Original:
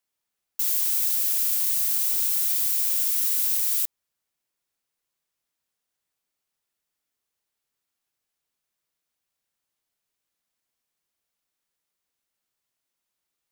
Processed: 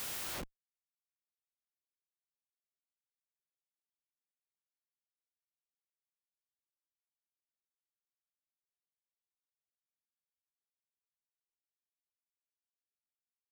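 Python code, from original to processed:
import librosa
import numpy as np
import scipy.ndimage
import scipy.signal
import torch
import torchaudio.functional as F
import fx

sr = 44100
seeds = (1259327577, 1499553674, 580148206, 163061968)

y = fx.paulstretch(x, sr, seeds[0], factor=9.3, window_s=0.05, from_s=3.82)
y = fx.schmitt(y, sr, flips_db=-30.0)
y = y * librosa.db_to_amplitude(-1.0)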